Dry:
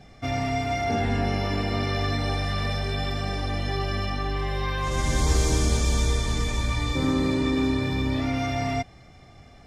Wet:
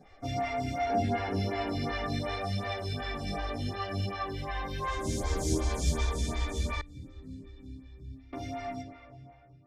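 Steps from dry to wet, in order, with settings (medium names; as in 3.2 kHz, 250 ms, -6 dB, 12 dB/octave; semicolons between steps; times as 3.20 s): fade out at the end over 2.33 s; 4.94–5.70 s: peaking EQ 2.1 kHz -5 dB 1.8 oct; reverberation RT60 3.0 s, pre-delay 91 ms, DRR 8 dB; chorus voices 2, 0.75 Hz, delay 12 ms, depth 2.2 ms; 6.81–8.33 s: amplifier tone stack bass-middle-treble 10-0-1; lamp-driven phase shifter 2.7 Hz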